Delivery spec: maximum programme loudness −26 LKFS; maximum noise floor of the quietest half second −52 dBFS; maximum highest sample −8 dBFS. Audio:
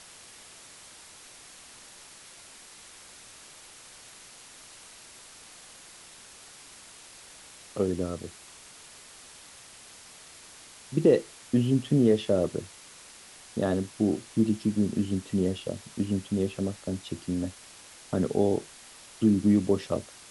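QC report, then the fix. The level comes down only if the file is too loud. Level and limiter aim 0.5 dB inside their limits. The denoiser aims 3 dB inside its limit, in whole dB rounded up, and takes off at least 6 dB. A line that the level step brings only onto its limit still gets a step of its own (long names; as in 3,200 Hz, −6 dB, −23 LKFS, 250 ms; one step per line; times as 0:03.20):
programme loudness −28.0 LKFS: in spec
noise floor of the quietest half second −50 dBFS: out of spec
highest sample −10.0 dBFS: in spec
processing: broadband denoise 6 dB, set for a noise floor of −50 dBFS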